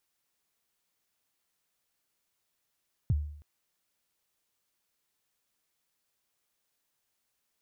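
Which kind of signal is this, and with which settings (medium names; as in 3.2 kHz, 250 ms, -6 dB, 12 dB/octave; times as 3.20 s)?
kick drum length 0.32 s, from 150 Hz, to 74 Hz, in 34 ms, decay 0.64 s, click off, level -20.5 dB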